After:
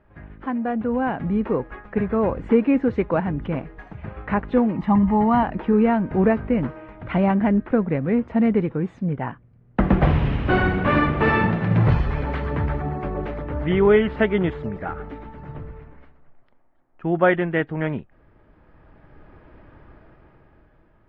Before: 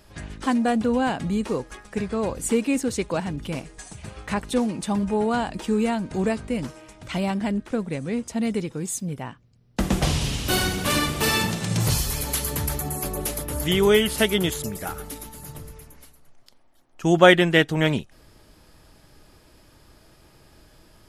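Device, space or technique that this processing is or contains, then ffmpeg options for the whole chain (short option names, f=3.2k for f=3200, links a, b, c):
action camera in a waterproof case: -filter_complex "[0:a]asettb=1/sr,asplit=3[a][b][c];[a]atrim=end=4.764[d];[b]atrim=start=4.76:end=5.43,asetpts=PTS-STARTPTS,afade=t=in:d=0.004:c=qsin,afade=t=out:st=0.666:d=0.004:c=qsin,aecho=1:1:1:0.71,atrim=end_sample=29547[e];[c]atrim=start=5.426[f];[d][e]acrossfade=d=0.004:c1=hsin:c2=qsin[g];[g][f]acrossfade=d=0.004:c1=qsin:c2=hsin,lowpass=f=2k:w=0.5412,lowpass=f=2k:w=1.3066,dynaudnorm=f=220:g=11:m=13dB,volume=-4.5dB" -ar 44100 -c:a aac -b:a 48k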